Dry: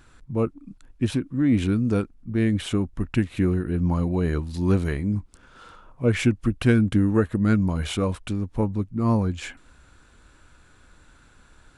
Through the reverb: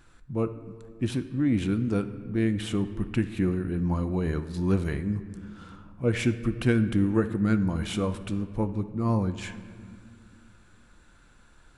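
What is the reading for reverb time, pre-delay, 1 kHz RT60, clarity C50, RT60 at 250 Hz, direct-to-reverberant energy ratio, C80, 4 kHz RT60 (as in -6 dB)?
2.0 s, 6 ms, 1.9 s, 12.0 dB, 3.2 s, 9.5 dB, 14.0 dB, 1.2 s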